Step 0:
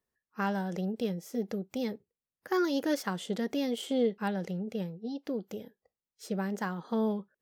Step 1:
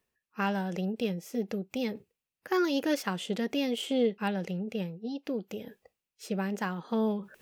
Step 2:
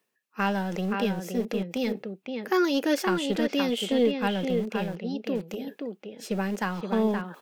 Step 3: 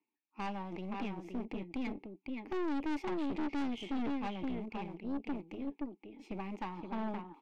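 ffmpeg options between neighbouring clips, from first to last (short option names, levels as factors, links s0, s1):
-af "equalizer=f=2600:w=3.3:g=9,areverse,acompressor=mode=upward:threshold=0.01:ratio=2.5,areverse,volume=1.12"
-filter_complex "[0:a]acrossover=split=150|4500[s0][s1][s2];[s0]acrusher=bits=5:dc=4:mix=0:aa=0.000001[s3];[s1]aecho=1:1:522:0.562[s4];[s3][s4][s2]amix=inputs=3:normalize=0,volume=1.58"
-filter_complex "[0:a]asplit=3[s0][s1][s2];[s0]bandpass=f=300:t=q:w=8,volume=1[s3];[s1]bandpass=f=870:t=q:w=8,volume=0.501[s4];[s2]bandpass=f=2240:t=q:w=8,volume=0.355[s5];[s3][s4][s5]amix=inputs=3:normalize=0,aeval=exprs='(tanh(112*val(0)+0.65)-tanh(0.65))/112':c=same,volume=2.37"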